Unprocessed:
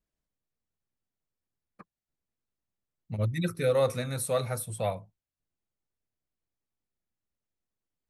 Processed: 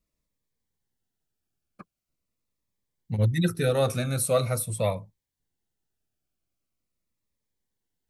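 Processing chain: cascading phaser falling 0.43 Hz; gain +6 dB

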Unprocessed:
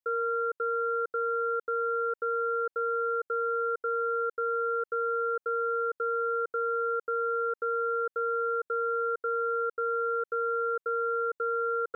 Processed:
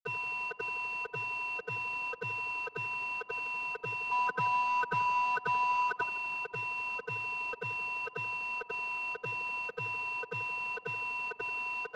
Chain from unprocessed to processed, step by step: spectral gain 4.11–6.03, 400–800 Hz +12 dB; bell 540 Hz -9.5 dB 1.4 oct; frequency shift +58 Hz; formant-preserving pitch shift +11 st; companded quantiser 4-bit; air absorption 210 m; on a send: tape echo 84 ms, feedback 81%, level -13 dB, low-pass 1200 Hz

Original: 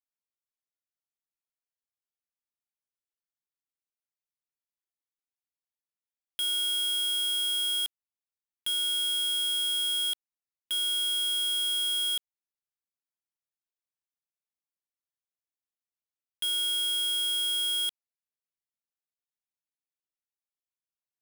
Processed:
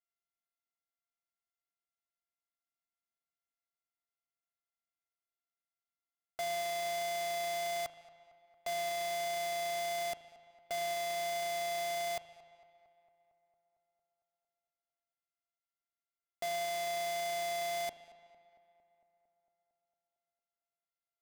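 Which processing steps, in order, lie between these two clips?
sample sorter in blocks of 64 samples; darkening echo 0.227 s, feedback 68%, low-pass 3000 Hz, level -19 dB; spring tank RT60 1.6 s, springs 37 ms, chirp 70 ms, DRR 12.5 dB; gain -6.5 dB

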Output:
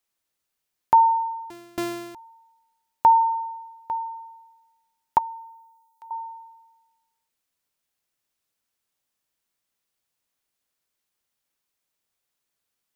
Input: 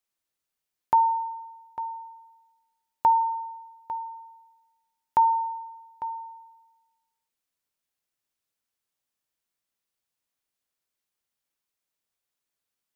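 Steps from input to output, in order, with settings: 1.5–2.15 sample sorter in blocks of 128 samples; 5.18–6.11 differentiator; gain +4.5 dB

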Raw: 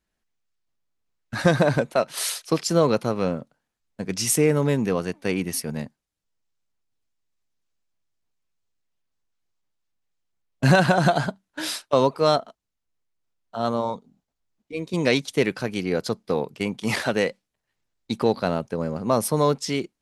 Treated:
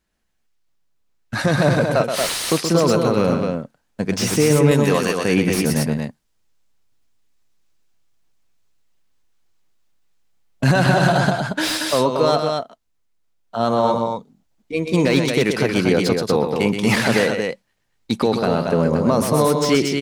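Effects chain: 4.71–5.2 tilt +3 dB/oct; in parallel at +2 dB: vocal rider within 5 dB 0.5 s; on the sum: limiter -6.5 dBFS, peak gain reduction 9.5 dB; loudspeakers at several distances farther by 43 m -7 dB, 79 m -5 dB; slew limiter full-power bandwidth 420 Hz

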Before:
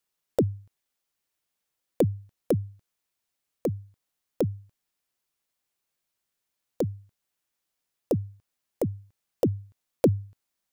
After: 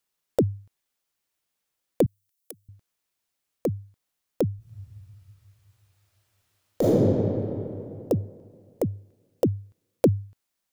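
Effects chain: 2.06–2.69 differentiator; 4.56–6.97 reverb throw, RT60 2.8 s, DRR -11 dB; gain +1.5 dB

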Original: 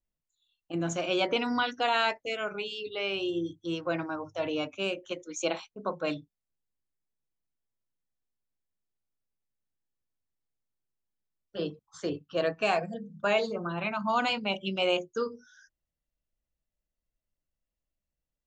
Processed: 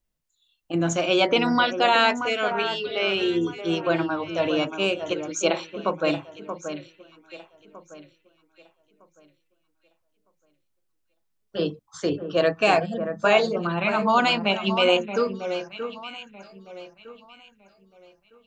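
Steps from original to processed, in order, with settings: echo with dull and thin repeats by turns 0.629 s, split 1800 Hz, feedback 50%, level -8.5 dB; gain +7.5 dB

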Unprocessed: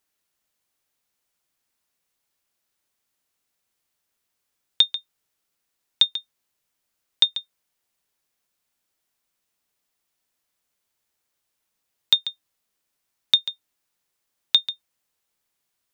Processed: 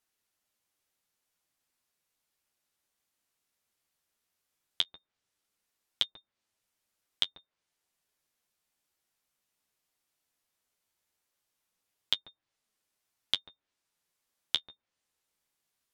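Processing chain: treble ducked by the level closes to 1100 Hz, closed at -24 dBFS; flange 0.16 Hz, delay 8.7 ms, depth 5.9 ms, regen -25%

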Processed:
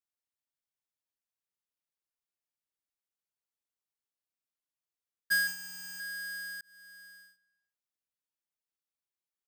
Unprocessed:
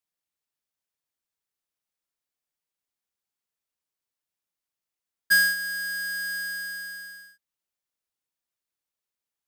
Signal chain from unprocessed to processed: 5.47–6 ripple EQ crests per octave 0.74, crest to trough 15 dB; outdoor echo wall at 63 m, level -26 dB; 6.61–7.23 fade in; gain -8.5 dB

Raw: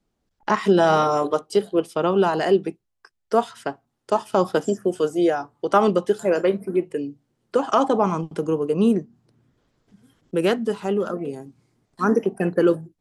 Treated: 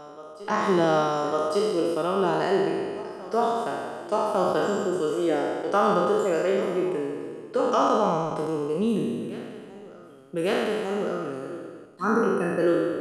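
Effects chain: spectral trails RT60 1.89 s; resonator 620 Hz, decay 0.41 s, mix 60%; on a send: reverse echo 1.153 s -17 dB

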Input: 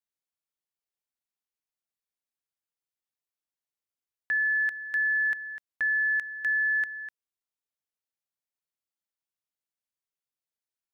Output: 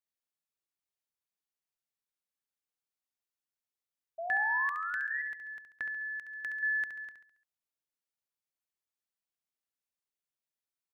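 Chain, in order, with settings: 4.8–6.63 compressor, threshold -32 dBFS, peak gain reduction 7.5 dB; 4.18–5.22 painted sound rise 650–2000 Hz -34 dBFS; feedback echo 69 ms, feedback 46%, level -8 dB; gain -3.5 dB

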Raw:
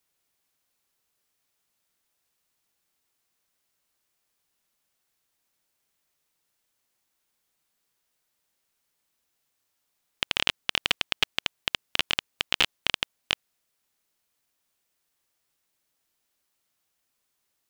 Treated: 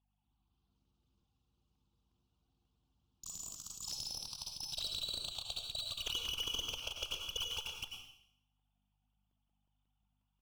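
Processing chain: sine-wave speech; bell 1600 Hz -5.5 dB 2.4 oct; notches 50/100/150/200/250/300/350/400 Hz; compressor 12:1, threshold -31 dBFS, peak gain reduction 10 dB; hum 50 Hz, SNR 33 dB; tempo 1.7×; added harmonics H 5 -24 dB, 6 -19 dB, 7 -20 dB, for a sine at -21 dBFS; one-sided clip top -38.5 dBFS; plate-style reverb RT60 0.71 s, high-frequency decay 1×, pre-delay 80 ms, DRR 2 dB; echoes that change speed 0.237 s, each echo +5 st, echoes 3; Butterworth band-stop 1900 Hz, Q 1.2; crackling interface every 0.18 s, samples 128, repeat, from 0.31; gain +1 dB

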